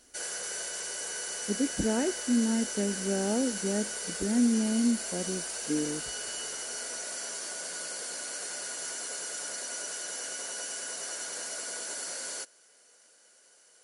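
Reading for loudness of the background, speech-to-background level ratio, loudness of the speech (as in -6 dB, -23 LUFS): -34.5 LUFS, 4.0 dB, -30.5 LUFS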